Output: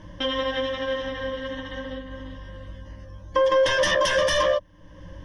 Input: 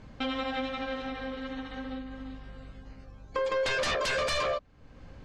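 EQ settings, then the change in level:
EQ curve with evenly spaced ripples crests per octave 1.2, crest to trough 16 dB
+3.5 dB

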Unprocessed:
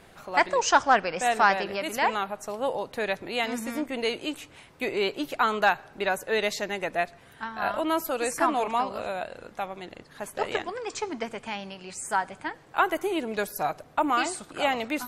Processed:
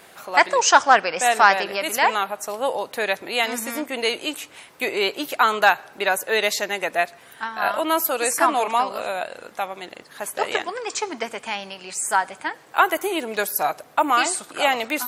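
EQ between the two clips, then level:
high-pass filter 510 Hz 6 dB per octave
high-shelf EQ 11,000 Hz +11.5 dB
+7.0 dB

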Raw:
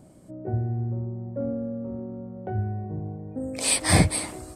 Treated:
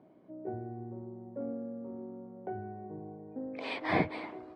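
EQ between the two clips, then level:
loudspeaker in its box 490–2,800 Hz, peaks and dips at 550 Hz −8 dB, 800 Hz −4 dB, 1,300 Hz −7 dB, 1,800 Hz −5 dB, 2,700 Hz −6 dB
spectral tilt −2 dB per octave
0.0 dB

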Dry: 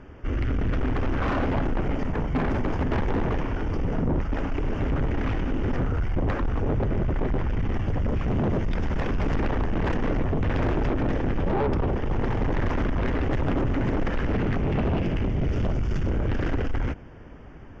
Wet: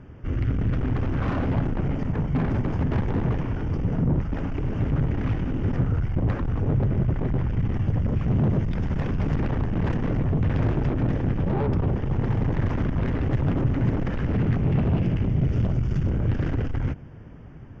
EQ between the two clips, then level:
parametric band 130 Hz +11.5 dB 1.6 octaves
−4.5 dB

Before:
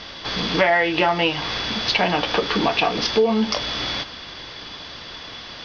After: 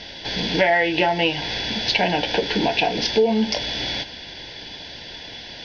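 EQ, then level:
Butterworth band-reject 1,200 Hz, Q 2.1
0.0 dB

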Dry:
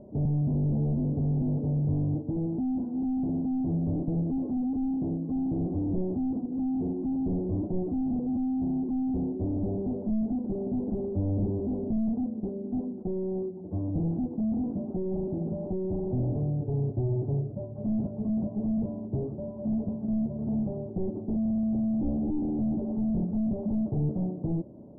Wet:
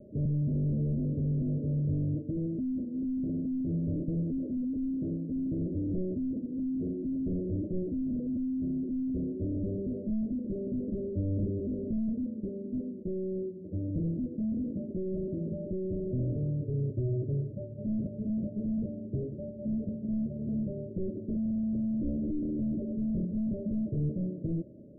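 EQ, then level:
Chebyshev low-pass filter 630 Hz, order 8
−2.5 dB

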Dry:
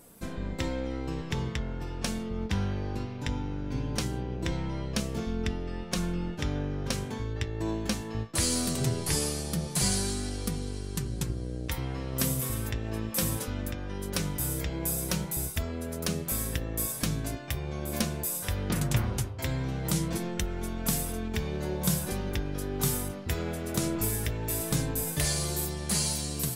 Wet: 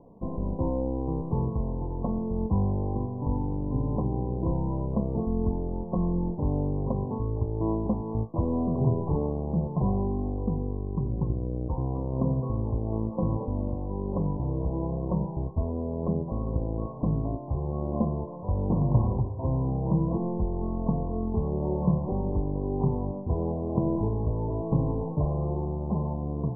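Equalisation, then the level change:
Chebyshev low-pass filter 1,100 Hz, order 10
+5.0 dB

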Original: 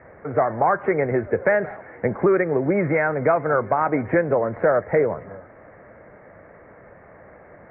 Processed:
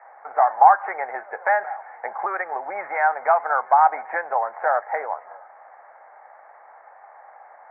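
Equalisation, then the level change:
dynamic equaliser 1,700 Hz, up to +3 dB, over −35 dBFS, Q 2.5
high-pass with resonance 800 Hz, resonance Q 7.4
parametric band 1,300 Hz +12 dB 2.7 octaves
−15.5 dB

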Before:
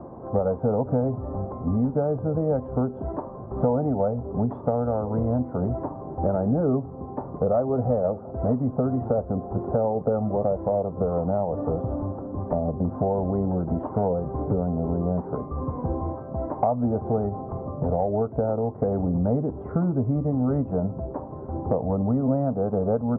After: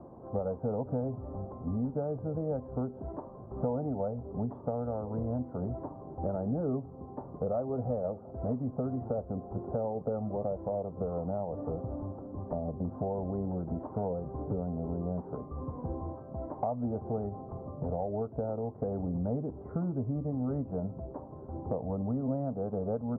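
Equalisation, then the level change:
low-pass filter 1,400 Hz 6 dB per octave
−9.0 dB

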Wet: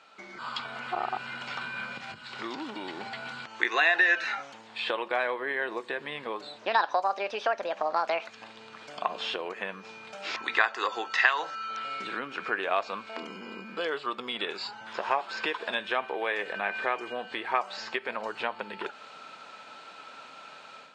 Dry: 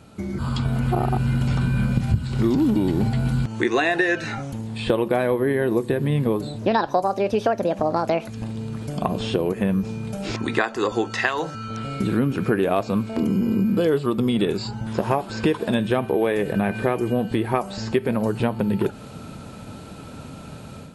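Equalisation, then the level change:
Gaussian smoothing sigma 1.7 samples
high-pass filter 1,100 Hz 12 dB per octave
+2.5 dB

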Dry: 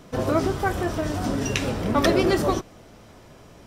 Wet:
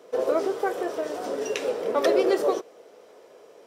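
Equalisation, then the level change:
high-pass with resonance 460 Hz, resonance Q 4.9
−6.5 dB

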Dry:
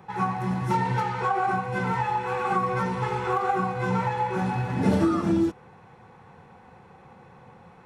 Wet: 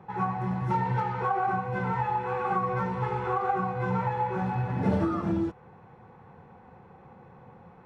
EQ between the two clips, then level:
low-pass filter 1,200 Hz 6 dB per octave
dynamic equaliser 280 Hz, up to −7 dB, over −37 dBFS, Q 1.3
0.0 dB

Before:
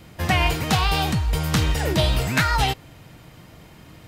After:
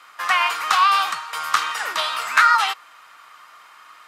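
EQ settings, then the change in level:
high-pass with resonance 1,200 Hz, resonance Q 6
low-pass filter 12,000 Hz 12 dB per octave
0.0 dB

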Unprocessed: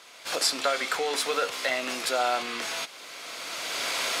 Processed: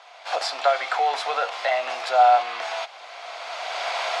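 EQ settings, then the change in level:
high-pass with resonance 730 Hz, resonance Q 4.9
low-pass filter 4,300 Hz 12 dB per octave
0.0 dB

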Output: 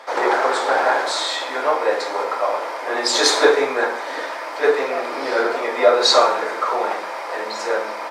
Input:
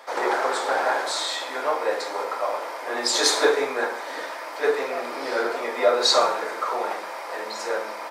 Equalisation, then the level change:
high-shelf EQ 9,500 Hz −11.5 dB
mains-hum notches 60/120/180/240 Hz
+5.5 dB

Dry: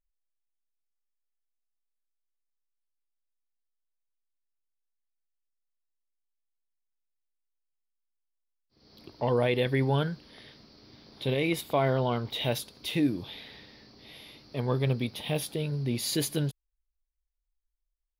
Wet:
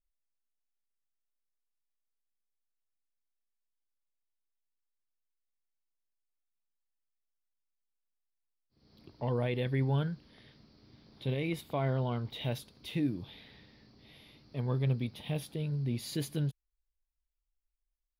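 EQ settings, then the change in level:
bass and treble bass +14 dB, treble −4 dB
low-shelf EQ 220 Hz −8.5 dB
−8.0 dB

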